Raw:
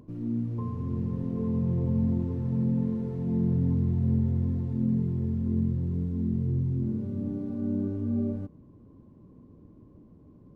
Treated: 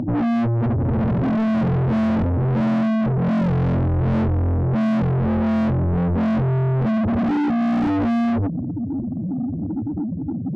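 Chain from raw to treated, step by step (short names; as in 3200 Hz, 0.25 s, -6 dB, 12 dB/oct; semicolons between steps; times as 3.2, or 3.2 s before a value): spectral contrast raised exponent 3.6; overdrive pedal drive 45 dB, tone 1200 Hz, clips at -16 dBFS; gain +3 dB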